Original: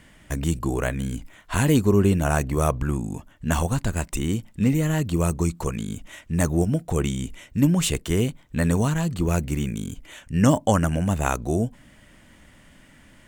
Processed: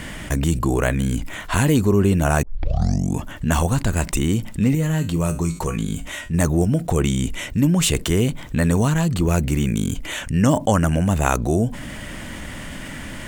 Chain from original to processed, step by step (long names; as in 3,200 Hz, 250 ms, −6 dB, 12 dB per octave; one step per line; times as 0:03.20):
0:02.43: tape start 0.71 s
0:04.75–0:06.34: tuned comb filter 54 Hz, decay 0.23 s, harmonics odd, mix 70%
envelope flattener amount 50%